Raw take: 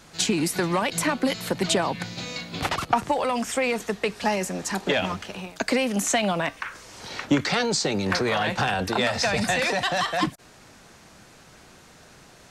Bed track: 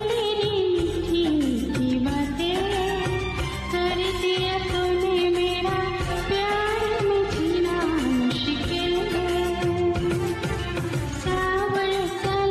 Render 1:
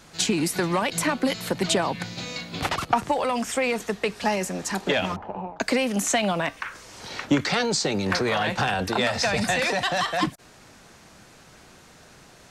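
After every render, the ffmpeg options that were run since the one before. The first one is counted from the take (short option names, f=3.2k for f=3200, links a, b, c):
-filter_complex "[0:a]asettb=1/sr,asplit=3[a][b][c];[a]atrim=end=5.164[d];[b]atrim=start=5.16:end=5.6,asetpts=PTS-STARTPTS,afade=t=in:d=0.004:c=qsin,afade=t=out:st=0.436:d=0.004:c=qsin,lowpass=f=880:t=q:w=4.6[e];[c]atrim=start=5.596[f];[d][e]acrossfade=d=0.004:c1=hsin:c2=qsin[g];[g][f]acrossfade=d=0.004:c1=qsin:c2=hsin"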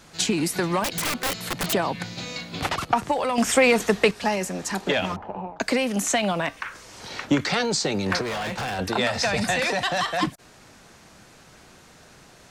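-filter_complex "[0:a]asettb=1/sr,asplit=3[a][b][c];[a]atrim=end=0.844[d];[b]atrim=start=0.84:end=1.73,asetpts=PTS-STARTPTS,afade=t=in:d=0.004:c=qsin,afade=t=out:st=0.886:d=0.004:c=qsin,aeval=exprs='(mod(9.44*val(0)+1,2)-1)/9.44':c=same[e];[c]atrim=start=1.726[f];[d][e]acrossfade=d=0.004:c1=hsin:c2=qsin[g];[g][f]acrossfade=d=0.004:c1=qsin:c2=hsin,asettb=1/sr,asplit=3[h][i][j];[h]atrim=end=8.214[k];[i]atrim=start=8.21:end=8.79,asetpts=PTS-STARTPTS,afade=t=in:d=0.004:c=qsin,afade=t=out:st=0.576:d=0.004:c=qsin,asoftclip=type=hard:threshold=-26.5dB[l];[j]atrim=start=8.786[m];[k][l]acrossfade=d=0.004:c1=hsin:c2=qsin[n];[n][m]acrossfade=d=0.004:c1=qsin:c2=hsin,asplit=3[o][p][q];[o]atrim=end=3.382[r];[p]atrim=start=3.378:end=4.112,asetpts=PTS-STARTPTS,volume=7dB[s];[q]atrim=start=4.108[t];[r][s]acrossfade=d=0.004:c1=hsin:c2=hsin[u];[u][t]acrossfade=d=0.004:c1=hsin:c2=hsin"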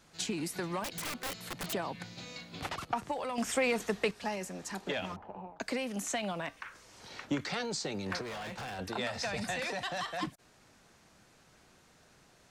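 -af "volume=-12dB"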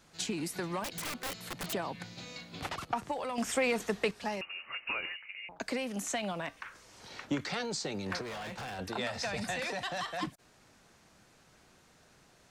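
-filter_complex "[0:a]asettb=1/sr,asplit=3[a][b][c];[a]atrim=end=4.414[d];[b]atrim=start=4.41:end=5.49,asetpts=PTS-STARTPTS,afade=t=in:d=0.004:c=qsin,afade=t=out:st=1.076:d=0.004:c=qsin,lowpass=f=2.6k:t=q:w=0.5098,lowpass=f=2.6k:t=q:w=0.6013,lowpass=f=2.6k:t=q:w=0.9,lowpass=f=2.6k:t=q:w=2.563,afreqshift=-3000[e];[c]atrim=start=5.486[f];[d][e]acrossfade=d=0.004:c1=hsin:c2=qsin[g];[g][f]acrossfade=d=0.004:c1=qsin:c2=hsin"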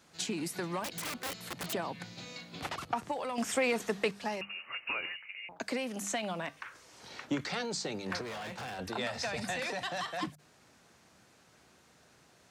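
-af "highpass=68,bandreject=f=50:t=h:w=6,bandreject=f=100:t=h:w=6,bandreject=f=150:t=h:w=6,bandreject=f=200:t=h:w=6"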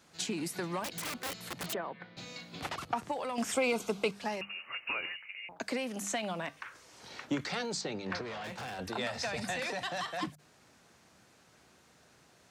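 -filter_complex "[0:a]asettb=1/sr,asplit=3[a][b][c];[a]atrim=end=1.744[d];[b]atrim=start=1.74:end=2.17,asetpts=PTS-STARTPTS,afade=t=in:d=0.004:c=qsin,afade=t=out:st=0.426:d=0.004:c=qsin,highpass=230,equalizer=f=270:t=q:w=4:g=-7,equalizer=f=840:t=q:w=4:g=-4,equalizer=f=2.6k:t=q:w=4:g=-8,lowpass=f=2.8k:w=0.5412,lowpass=f=2.8k:w=1.3066[e];[c]atrim=start=2.166[f];[d][e]acrossfade=d=0.004:c1=hsin:c2=qsin[g];[g][f]acrossfade=d=0.004:c1=qsin:c2=hsin,asettb=1/sr,asplit=3[h][i][j];[h]atrim=end=3.544[k];[i]atrim=start=3.54:end=4.12,asetpts=PTS-STARTPTS,afade=t=in:d=0.004:c=qsin,afade=t=out:st=0.576:d=0.004:c=qsin,asuperstop=centerf=1800:order=4:qfactor=3.4[l];[j]atrim=start=4.116[m];[k][l]acrossfade=d=0.004:c1=hsin:c2=qsin[n];[n][m]acrossfade=d=0.004:c1=qsin:c2=hsin,asettb=1/sr,asplit=3[o][p][q];[o]atrim=end=7.814[r];[p]atrim=start=7.81:end=8.44,asetpts=PTS-STARTPTS,afade=t=in:d=0.004:c=qsin,afade=t=out:st=0.626:d=0.004:c=qsin,lowpass=4.8k[s];[q]atrim=start=8.436[t];[r][s]acrossfade=d=0.004:c1=hsin:c2=qsin[u];[u][t]acrossfade=d=0.004:c1=qsin:c2=hsin"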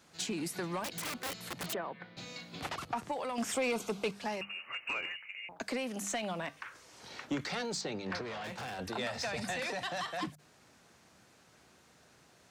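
-af "asoftclip=type=tanh:threshold=-26dB"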